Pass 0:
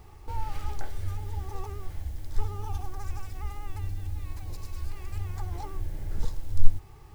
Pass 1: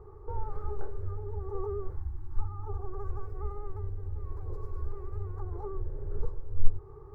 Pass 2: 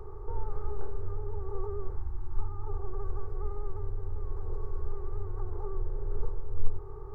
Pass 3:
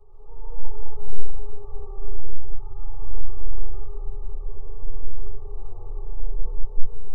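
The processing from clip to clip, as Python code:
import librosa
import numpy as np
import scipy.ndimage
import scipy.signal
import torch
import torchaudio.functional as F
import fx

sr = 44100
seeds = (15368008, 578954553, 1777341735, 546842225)

y1 = fx.spec_box(x, sr, start_s=1.96, length_s=0.7, low_hz=370.0, high_hz=740.0, gain_db=-25)
y1 = fx.rider(y1, sr, range_db=10, speed_s=0.5)
y1 = fx.curve_eq(y1, sr, hz=(150.0, 240.0, 410.0, 680.0, 1200.0, 2800.0, 4100.0), db=(0, -18, 14, -6, 3, -30, -26))
y1 = y1 * 10.0 ** (-2.5 / 20.0)
y2 = fx.bin_compress(y1, sr, power=0.6)
y2 = y2 * 10.0 ** (-4.5 / 20.0)
y3 = fx.fixed_phaser(y2, sr, hz=650.0, stages=4)
y3 = fx.chorus_voices(y3, sr, voices=4, hz=0.37, base_ms=12, depth_ms=4.8, mix_pct=60)
y3 = fx.rev_freeverb(y3, sr, rt60_s=3.0, hf_ratio=0.9, predelay_ms=90, drr_db=-9.5)
y3 = y3 * 10.0 ** (-7.0 / 20.0)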